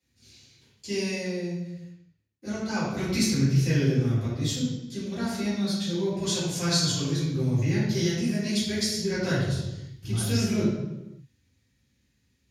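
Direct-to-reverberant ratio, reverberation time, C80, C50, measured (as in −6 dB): −12.5 dB, 1.1 s, 2.5 dB, −0.5 dB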